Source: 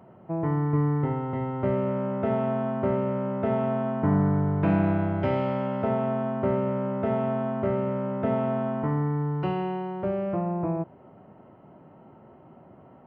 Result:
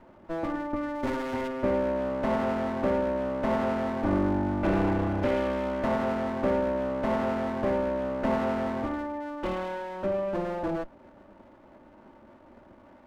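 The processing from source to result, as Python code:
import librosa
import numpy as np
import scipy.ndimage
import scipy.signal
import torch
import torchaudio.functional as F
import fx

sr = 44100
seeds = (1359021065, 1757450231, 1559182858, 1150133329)

y = fx.lower_of_two(x, sr, delay_ms=3.4)
y = fx.high_shelf(y, sr, hz=fx.line((0.95, 2700.0), (1.47, 2400.0)), db=11.0, at=(0.95, 1.47), fade=0.02)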